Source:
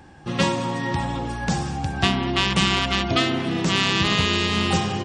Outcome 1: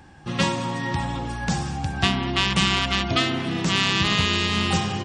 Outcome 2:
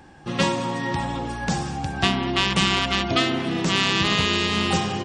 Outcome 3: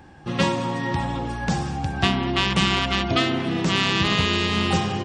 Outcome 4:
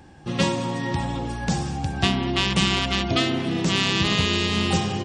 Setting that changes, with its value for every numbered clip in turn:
peaking EQ, frequency: 440 Hz, 84 Hz, 8.8 kHz, 1.3 kHz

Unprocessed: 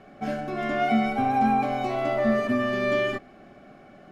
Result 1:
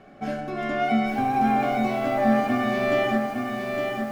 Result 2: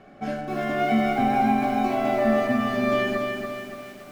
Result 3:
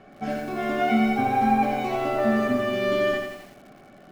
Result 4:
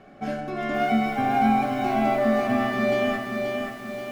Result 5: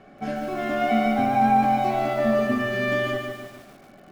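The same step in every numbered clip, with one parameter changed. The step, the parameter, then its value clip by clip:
bit-crushed delay, time: 860 ms, 285 ms, 86 ms, 529 ms, 146 ms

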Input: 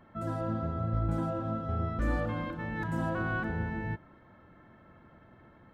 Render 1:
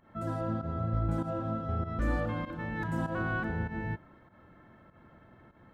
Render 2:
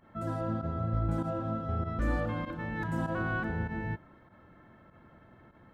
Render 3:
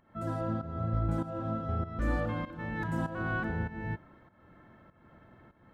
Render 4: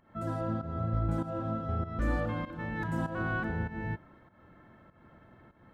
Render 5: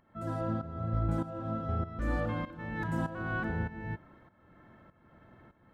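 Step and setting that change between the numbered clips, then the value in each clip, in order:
volume shaper, release: 118 ms, 67 ms, 317 ms, 215 ms, 532 ms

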